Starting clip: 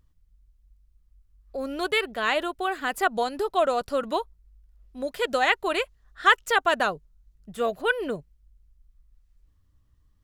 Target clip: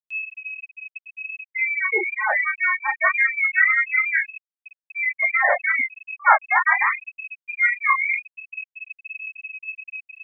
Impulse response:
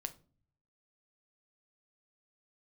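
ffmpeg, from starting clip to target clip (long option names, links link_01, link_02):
-af "aeval=exprs='val(0)+0.5*0.0422*sgn(val(0))':channel_layout=same,bandreject=frequency=50:width_type=h:width=6,bandreject=frequency=100:width_type=h:width=6,bandreject=frequency=150:width_type=h:width=6,aecho=1:1:19|40:0.708|0.668,lowpass=frequency=2200:width_type=q:width=0.5098,lowpass=frequency=2200:width_type=q:width=0.6013,lowpass=frequency=2200:width_type=q:width=0.9,lowpass=frequency=2200:width_type=q:width=2.563,afreqshift=-2600,afftfilt=real='re*gte(hypot(re,im),0.282)':imag='im*gte(hypot(re,im),0.282)':win_size=1024:overlap=0.75,acompressor=mode=upward:threshold=-39dB:ratio=2.5,volume=1dB"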